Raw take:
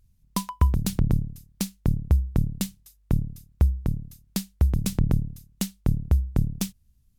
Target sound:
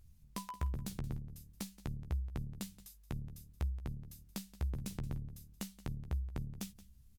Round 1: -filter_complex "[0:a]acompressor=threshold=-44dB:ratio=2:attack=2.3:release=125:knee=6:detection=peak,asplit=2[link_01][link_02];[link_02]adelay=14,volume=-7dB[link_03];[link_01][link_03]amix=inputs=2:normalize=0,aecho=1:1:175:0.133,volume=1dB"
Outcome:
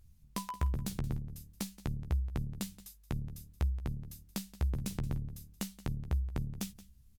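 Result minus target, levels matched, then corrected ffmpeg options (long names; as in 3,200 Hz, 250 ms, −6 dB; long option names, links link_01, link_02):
downward compressor: peak gain reduction −5 dB
-filter_complex "[0:a]acompressor=threshold=-53.5dB:ratio=2:attack=2.3:release=125:knee=6:detection=peak,asplit=2[link_01][link_02];[link_02]adelay=14,volume=-7dB[link_03];[link_01][link_03]amix=inputs=2:normalize=0,aecho=1:1:175:0.133,volume=1dB"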